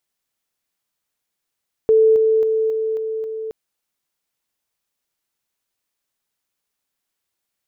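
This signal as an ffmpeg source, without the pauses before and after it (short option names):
-f lavfi -i "aevalsrc='pow(10,(-9.5-3*floor(t/0.27))/20)*sin(2*PI*441*t)':d=1.62:s=44100"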